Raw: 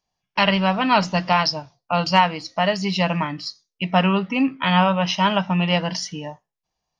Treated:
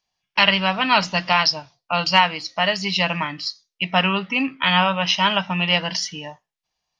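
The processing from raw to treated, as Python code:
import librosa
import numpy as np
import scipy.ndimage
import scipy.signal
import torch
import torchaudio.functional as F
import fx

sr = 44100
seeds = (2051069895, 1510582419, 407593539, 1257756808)

y = fx.peak_eq(x, sr, hz=3100.0, db=10.5, octaves=2.9)
y = F.gain(torch.from_numpy(y), -5.0).numpy()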